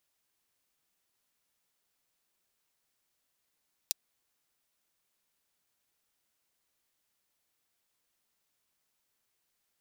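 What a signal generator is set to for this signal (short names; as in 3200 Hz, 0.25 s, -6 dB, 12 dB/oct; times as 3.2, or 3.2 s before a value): closed hi-hat, high-pass 4200 Hz, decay 0.02 s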